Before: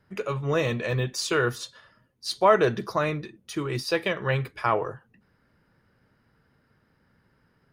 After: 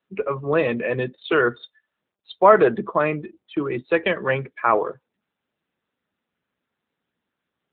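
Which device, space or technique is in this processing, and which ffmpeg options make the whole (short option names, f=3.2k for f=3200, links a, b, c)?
mobile call with aggressive noise cancelling: -af "highpass=f=170:w=0.5412,highpass=f=170:w=1.3066,highshelf=f=10k:g=-3,afftdn=nr=32:nf=-36,volume=6dB" -ar 8000 -c:a libopencore_amrnb -b:a 10200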